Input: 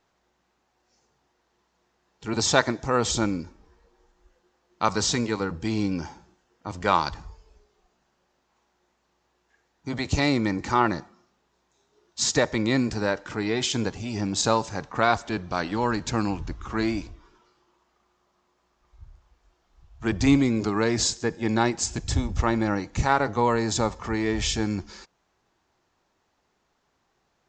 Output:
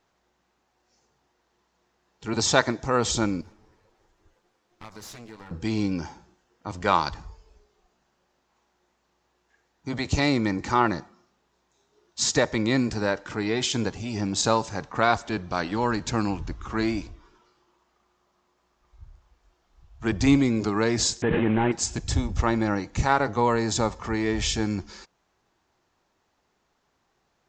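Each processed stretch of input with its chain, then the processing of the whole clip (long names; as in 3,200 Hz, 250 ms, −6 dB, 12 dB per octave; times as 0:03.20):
0:03.41–0:05.51: lower of the sound and its delayed copy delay 9.3 ms + downward compressor 3 to 1, threshold −45 dBFS
0:21.22–0:21.72: variable-slope delta modulation 16 kbit/s + envelope flattener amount 100%
whole clip: no processing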